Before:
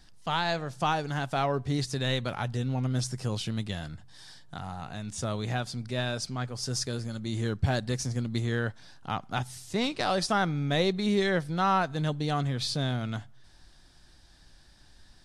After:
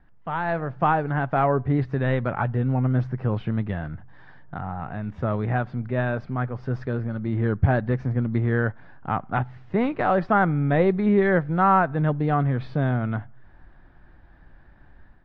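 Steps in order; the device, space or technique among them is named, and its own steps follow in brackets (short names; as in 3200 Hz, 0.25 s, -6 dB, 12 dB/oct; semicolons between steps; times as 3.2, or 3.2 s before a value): action camera in a waterproof case (LPF 1900 Hz 24 dB/oct; AGC gain up to 7 dB; AAC 64 kbps 48000 Hz)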